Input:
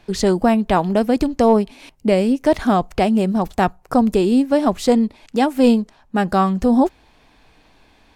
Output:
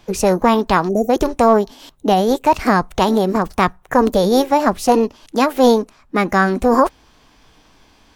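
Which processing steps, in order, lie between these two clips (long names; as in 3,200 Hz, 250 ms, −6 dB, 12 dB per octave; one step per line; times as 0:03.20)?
formants moved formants +5 semitones
gain on a spectral selection 0:00.89–0:01.10, 760–5,600 Hz −29 dB
level +1.5 dB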